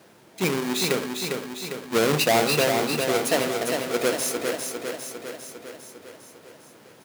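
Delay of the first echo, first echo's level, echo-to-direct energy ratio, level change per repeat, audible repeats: 0.402 s, -5.0 dB, -3.0 dB, -4.5 dB, 7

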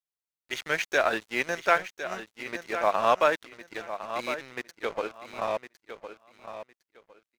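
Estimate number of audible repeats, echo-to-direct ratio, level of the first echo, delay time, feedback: 2, -11.0 dB, -11.0 dB, 1.058 s, 21%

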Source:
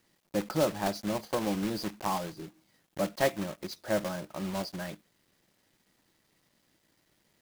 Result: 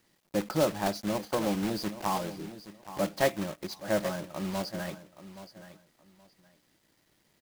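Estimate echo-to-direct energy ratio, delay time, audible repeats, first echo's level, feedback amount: -14.0 dB, 0.823 s, 2, -14.0 dB, 22%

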